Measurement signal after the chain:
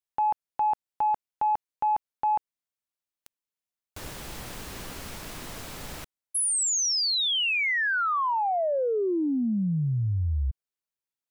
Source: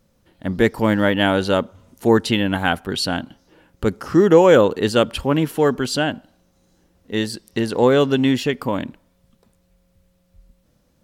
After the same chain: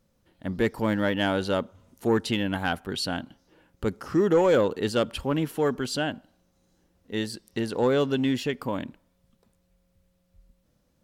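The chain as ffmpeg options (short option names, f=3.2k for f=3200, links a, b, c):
-af "asoftclip=type=tanh:threshold=-5.5dB,volume=-7dB"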